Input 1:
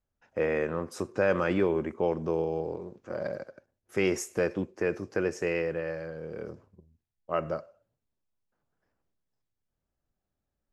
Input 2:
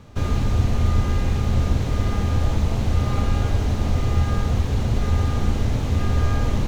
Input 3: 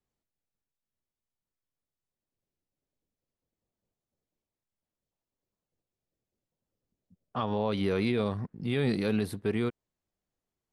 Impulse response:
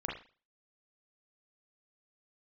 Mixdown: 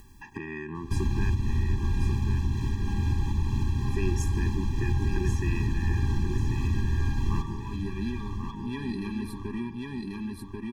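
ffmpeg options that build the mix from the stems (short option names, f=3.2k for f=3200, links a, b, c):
-filter_complex "[0:a]acompressor=threshold=-31dB:ratio=3,volume=2dB,asplit=3[a][b][c];[a]atrim=end=1.3,asetpts=PTS-STARTPTS,afade=t=out:st=1.296:d=0.004:c=hsin[d];[b]atrim=start=1.3:end=3.45,asetpts=PTS-STARTPTS,volume=0[e];[c]atrim=start=3.45,asetpts=PTS-STARTPTS,afade=t=in:d=0.004:c=hsin[f];[d][e][f]concat=n=3:v=0:a=1,asplit=3[g][h][i];[h]volume=-7dB[j];[1:a]alimiter=limit=-16.5dB:level=0:latency=1:release=405,adelay=750,volume=-0.5dB,asplit=2[k][l];[l]volume=-9.5dB[m];[2:a]aecho=1:1:4.2:0.37,asoftclip=type=tanh:threshold=-24.5dB,flanger=delay=2.2:depth=1.3:regen=-73:speed=1.7:shape=triangular,volume=0dB,asplit=3[n][o][p];[o]volume=-11dB[q];[p]volume=-4dB[r];[i]apad=whole_len=473041[s];[n][s]sidechaincompress=threshold=-36dB:ratio=8:attack=16:release=509[t];[3:a]atrim=start_sample=2205[u];[q][u]afir=irnorm=-1:irlink=0[v];[j][m][r]amix=inputs=3:normalize=0,aecho=0:1:1089|2178|3267|4356:1|0.3|0.09|0.027[w];[g][k][t][v][w]amix=inputs=5:normalize=0,acompressor=mode=upward:threshold=-27dB:ratio=2.5,afftfilt=real='re*eq(mod(floor(b*sr/1024/390),2),0)':imag='im*eq(mod(floor(b*sr/1024/390),2),0)':win_size=1024:overlap=0.75"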